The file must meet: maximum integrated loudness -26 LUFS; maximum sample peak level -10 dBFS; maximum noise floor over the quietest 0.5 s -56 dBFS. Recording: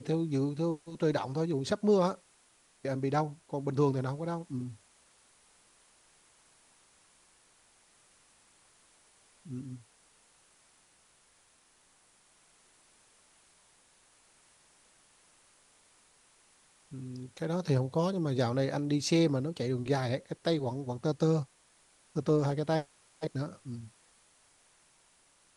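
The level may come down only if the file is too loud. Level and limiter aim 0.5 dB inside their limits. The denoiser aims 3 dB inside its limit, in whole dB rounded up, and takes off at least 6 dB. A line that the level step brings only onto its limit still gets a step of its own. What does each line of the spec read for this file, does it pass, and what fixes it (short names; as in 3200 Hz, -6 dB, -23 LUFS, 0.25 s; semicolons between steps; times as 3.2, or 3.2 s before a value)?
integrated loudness -32.0 LUFS: OK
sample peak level -15.0 dBFS: OK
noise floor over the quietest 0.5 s -66 dBFS: OK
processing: none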